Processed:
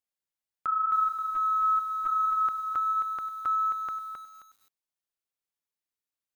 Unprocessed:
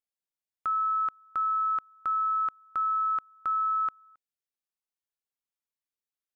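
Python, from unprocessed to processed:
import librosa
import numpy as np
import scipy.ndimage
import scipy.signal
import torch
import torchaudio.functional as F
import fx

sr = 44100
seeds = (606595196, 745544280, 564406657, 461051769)

y = fx.lpc_vocoder(x, sr, seeds[0], excitation='pitch_kept', order=8, at=(0.67, 2.48))
y = fx.echo_crushed(y, sr, ms=265, feedback_pct=35, bits=9, wet_db=-6)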